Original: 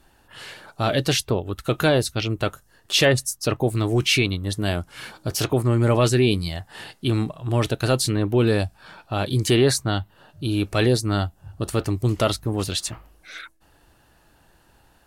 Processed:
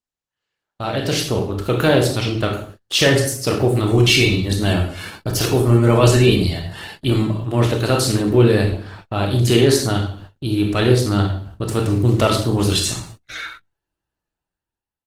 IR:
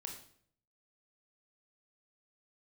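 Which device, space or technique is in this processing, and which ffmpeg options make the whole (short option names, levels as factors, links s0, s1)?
speakerphone in a meeting room: -filter_complex "[1:a]atrim=start_sample=2205[s0];[0:a][s0]afir=irnorm=-1:irlink=0,asplit=2[s1][s2];[s2]adelay=90,highpass=300,lowpass=3400,asoftclip=type=hard:threshold=0.119,volume=0.1[s3];[s1][s3]amix=inputs=2:normalize=0,dynaudnorm=f=240:g=9:m=6.31,agate=range=0.0158:threshold=0.0178:ratio=16:detection=peak,volume=0.891" -ar 48000 -c:a libopus -b:a 16k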